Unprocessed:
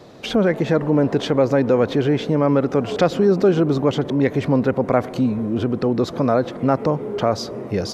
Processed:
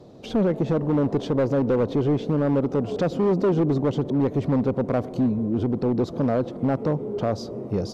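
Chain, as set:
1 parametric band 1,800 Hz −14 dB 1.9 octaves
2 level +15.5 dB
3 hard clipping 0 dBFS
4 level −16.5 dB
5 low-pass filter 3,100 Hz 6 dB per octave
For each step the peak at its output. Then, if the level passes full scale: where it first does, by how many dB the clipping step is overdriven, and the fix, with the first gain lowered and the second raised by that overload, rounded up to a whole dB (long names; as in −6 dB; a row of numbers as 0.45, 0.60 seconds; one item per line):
−8.0, +7.5, 0.0, −16.5, −16.5 dBFS
step 2, 7.5 dB
step 2 +7.5 dB, step 4 −8.5 dB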